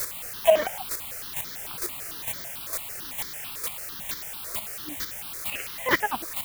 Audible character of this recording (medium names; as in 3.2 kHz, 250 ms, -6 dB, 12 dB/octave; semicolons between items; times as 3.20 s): a quantiser's noise floor 6-bit, dither triangular; chopped level 2.2 Hz, depth 60%, duty 10%; notches that jump at a steady rate 9 Hz 800–2700 Hz